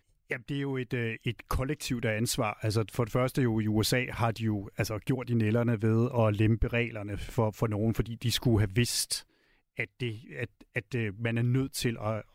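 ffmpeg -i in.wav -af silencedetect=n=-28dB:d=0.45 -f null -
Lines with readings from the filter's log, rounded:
silence_start: 9.17
silence_end: 9.80 | silence_duration: 0.62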